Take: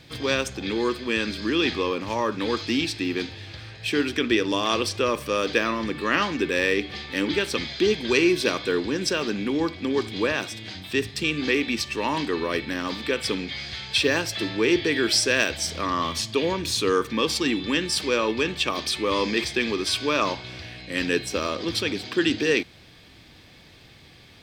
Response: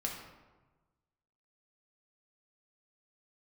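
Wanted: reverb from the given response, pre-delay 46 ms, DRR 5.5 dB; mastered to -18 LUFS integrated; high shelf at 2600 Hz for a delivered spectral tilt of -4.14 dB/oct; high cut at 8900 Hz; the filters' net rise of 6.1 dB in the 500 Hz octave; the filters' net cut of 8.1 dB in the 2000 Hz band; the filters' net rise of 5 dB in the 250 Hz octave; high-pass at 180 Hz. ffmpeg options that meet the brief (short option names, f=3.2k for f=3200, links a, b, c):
-filter_complex "[0:a]highpass=180,lowpass=8.9k,equalizer=f=250:t=o:g=5,equalizer=f=500:t=o:g=6.5,equalizer=f=2k:t=o:g=-7.5,highshelf=f=2.6k:g=-7,asplit=2[a][b];[1:a]atrim=start_sample=2205,adelay=46[c];[b][c]afir=irnorm=-1:irlink=0,volume=-7.5dB[d];[a][d]amix=inputs=2:normalize=0,volume=3dB"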